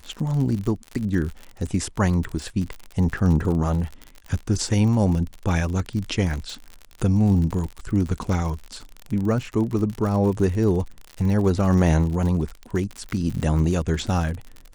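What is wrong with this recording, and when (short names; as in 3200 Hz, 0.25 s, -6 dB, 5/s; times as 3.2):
crackle 58/s -28 dBFS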